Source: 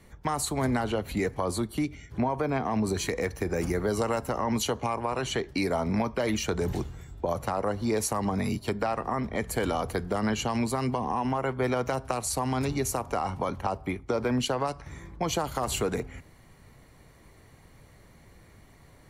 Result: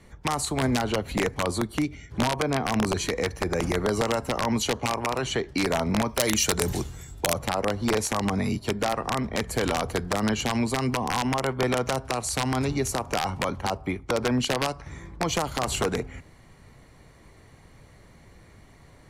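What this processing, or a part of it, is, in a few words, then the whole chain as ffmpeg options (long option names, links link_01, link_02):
overflowing digital effects unit: -filter_complex "[0:a]aeval=exprs='(mod(8.41*val(0)+1,2)-1)/8.41':channel_layout=same,lowpass=10000,asettb=1/sr,asplit=3[link_01][link_02][link_03];[link_01]atrim=end=6.094[link_04];[link_02]atrim=start=6.09:end=7.33,asetpts=PTS-STARTPTS,afade=type=in:duration=0.004:curve=qsin,afade=type=out:start_time=1.236:duration=0.004:curve=qsin,aemphasis=mode=production:type=75fm[link_05];[link_03]atrim=start=7.326[link_06];[link_04][link_05]acrossfade=duration=0.004:curve1=hsin:curve2=qsin[link_07];[link_07][link_06]acrossfade=duration=0.004:curve1=qsin:curve2=hsin,volume=2.5dB"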